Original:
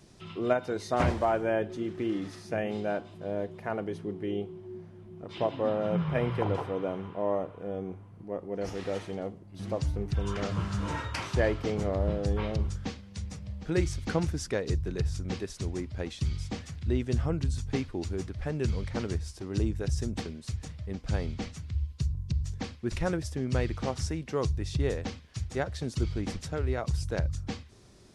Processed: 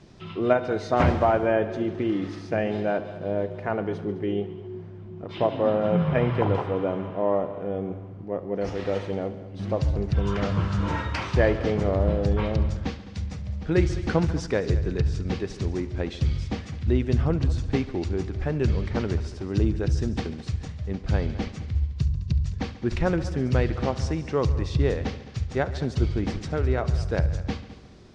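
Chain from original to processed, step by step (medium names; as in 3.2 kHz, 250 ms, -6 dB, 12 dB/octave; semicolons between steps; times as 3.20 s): distance through air 120 m; multi-head delay 70 ms, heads all three, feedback 43%, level -18.5 dB; trim +6 dB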